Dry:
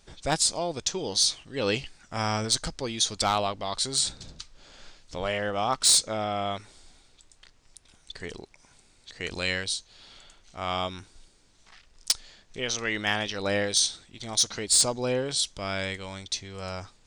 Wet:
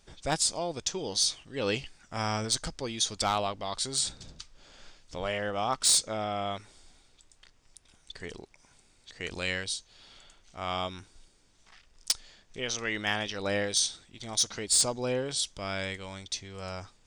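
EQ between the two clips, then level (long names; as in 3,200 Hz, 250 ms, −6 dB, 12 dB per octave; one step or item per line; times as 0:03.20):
notch filter 4,100 Hz, Q 18
−3.0 dB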